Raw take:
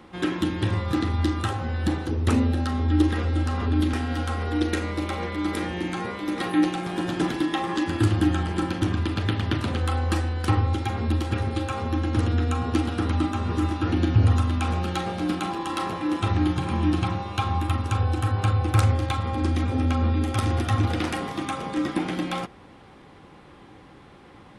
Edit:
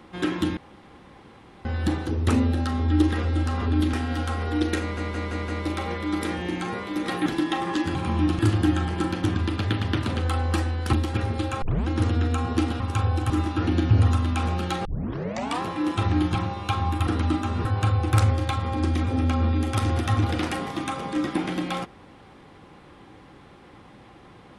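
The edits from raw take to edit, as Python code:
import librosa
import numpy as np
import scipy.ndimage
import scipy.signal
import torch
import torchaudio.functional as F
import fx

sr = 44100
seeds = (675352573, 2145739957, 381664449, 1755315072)

y = fx.edit(x, sr, fx.room_tone_fill(start_s=0.57, length_s=1.08),
    fx.stutter(start_s=4.8, slice_s=0.17, count=5),
    fx.cut(start_s=6.58, length_s=0.7),
    fx.cut(start_s=10.51, length_s=0.59),
    fx.tape_start(start_s=11.79, length_s=0.26),
    fx.swap(start_s=12.97, length_s=0.58, other_s=17.76, other_length_s=0.5),
    fx.tape_start(start_s=15.1, length_s=0.77),
    fx.move(start_s=16.59, length_s=0.44, to_s=7.97), tone=tone)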